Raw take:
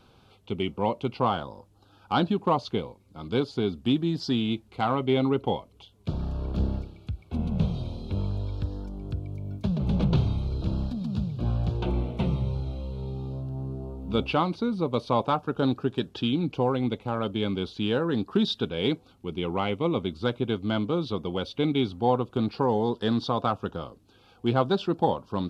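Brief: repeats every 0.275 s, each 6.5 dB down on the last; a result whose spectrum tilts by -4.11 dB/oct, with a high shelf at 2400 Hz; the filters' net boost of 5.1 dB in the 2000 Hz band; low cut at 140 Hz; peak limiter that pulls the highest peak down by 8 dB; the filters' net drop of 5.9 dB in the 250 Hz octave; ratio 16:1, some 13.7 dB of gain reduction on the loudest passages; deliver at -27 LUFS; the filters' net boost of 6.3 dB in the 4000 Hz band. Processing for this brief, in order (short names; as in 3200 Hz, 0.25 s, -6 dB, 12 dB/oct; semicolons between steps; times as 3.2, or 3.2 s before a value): HPF 140 Hz; bell 250 Hz -7 dB; bell 2000 Hz +6.5 dB; high shelf 2400 Hz -3.5 dB; bell 4000 Hz +8.5 dB; compressor 16:1, threshold -32 dBFS; limiter -26 dBFS; feedback echo 0.275 s, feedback 47%, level -6.5 dB; gain +11 dB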